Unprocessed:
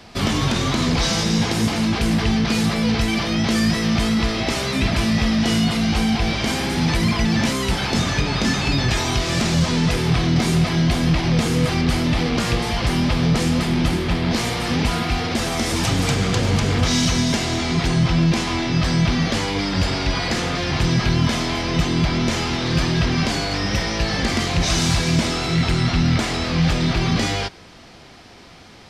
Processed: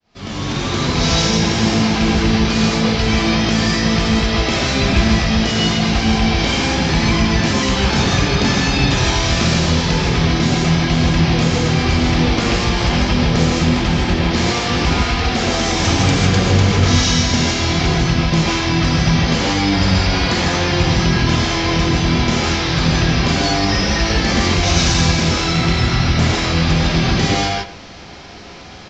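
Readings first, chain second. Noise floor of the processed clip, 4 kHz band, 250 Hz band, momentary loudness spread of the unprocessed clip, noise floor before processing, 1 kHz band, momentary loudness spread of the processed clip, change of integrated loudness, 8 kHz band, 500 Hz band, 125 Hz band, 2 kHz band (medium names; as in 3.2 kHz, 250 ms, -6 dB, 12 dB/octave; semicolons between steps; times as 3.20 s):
-32 dBFS, +5.0 dB, +3.0 dB, 3 LU, -43 dBFS, +5.5 dB, 2 LU, +4.0 dB, +4.0 dB, +5.0 dB, +4.0 dB, +5.0 dB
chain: fade-in on the opening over 1.12 s; in parallel at -2 dB: compression, threshold -26 dBFS, peak gain reduction 12 dB; on the sum: speakerphone echo 110 ms, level -13 dB; resampled via 16 kHz; gated-style reverb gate 180 ms rising, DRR -1.5 dB; trim -1 dB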